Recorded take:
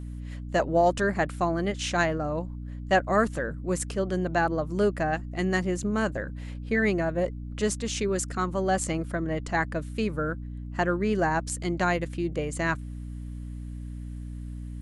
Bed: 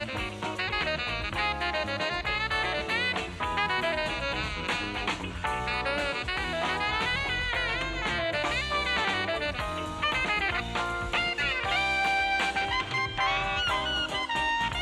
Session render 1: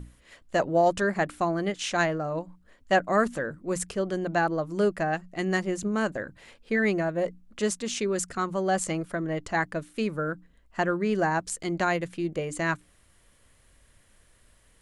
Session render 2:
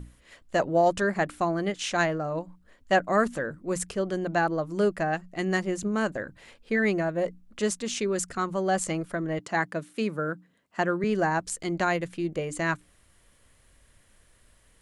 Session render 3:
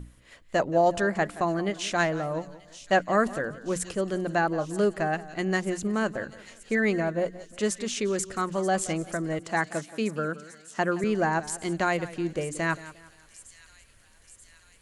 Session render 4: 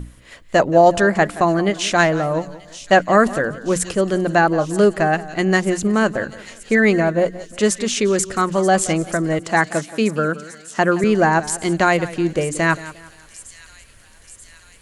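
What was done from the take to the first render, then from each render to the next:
hum notches 60/120/180/240/300 Hz
9.39–11.04 s: high-pass 130 Hz 24 dB/octave
feedback echo behind a high-pass 933 ms, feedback 65%, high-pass 4.1 kHz, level -11 dB; modulated delay 176 ms, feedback 36%, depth 76 cents, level -17 dB
trim +10 dB; peak limiter -2 dBFS, peak gain reduction 1.5 dB

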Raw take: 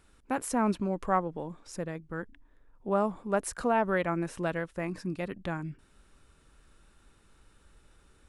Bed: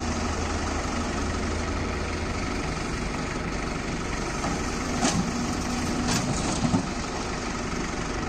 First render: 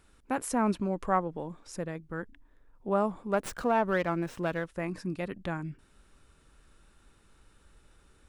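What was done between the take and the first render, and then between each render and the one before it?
3.33–4.67 s: sliding maximum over 3 samples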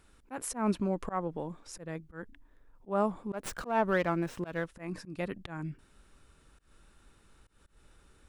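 slow attack 153 ms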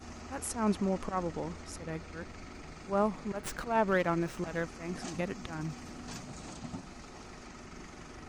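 add bed -18.5 dB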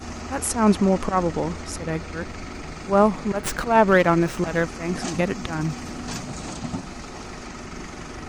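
trim +12 dB

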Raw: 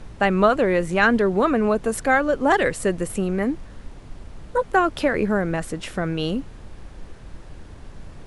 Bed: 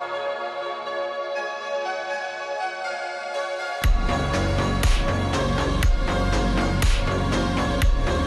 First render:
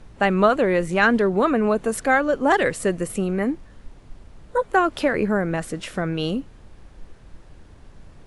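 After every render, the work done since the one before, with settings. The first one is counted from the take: noise print and reduce 6 dB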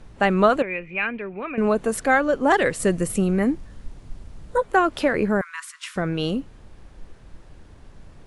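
0.62–1.58 s: four-pole ladder low-pass 2.5 kHz, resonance 90%; 2.79–4.60 s: tone controls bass +5 dB, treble +4 dB; 5.41–5.96 s: Chebyshev high-pass 980 Hz, order 10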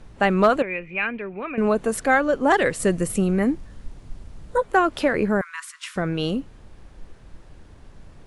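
overload inside the chain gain 7 dB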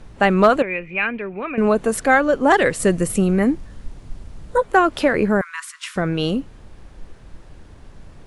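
trim +3.5 dB

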